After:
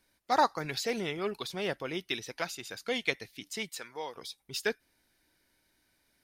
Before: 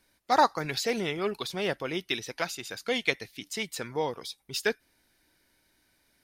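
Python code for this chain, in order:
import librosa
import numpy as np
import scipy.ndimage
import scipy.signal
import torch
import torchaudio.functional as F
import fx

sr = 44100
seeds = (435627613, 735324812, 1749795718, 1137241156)

y = fx.highpass(x, sr, hz=960.0, slope=6, at=(3.69, 4.15))
y = F.gain(torch.from_numpy(y), -3.5).numpy()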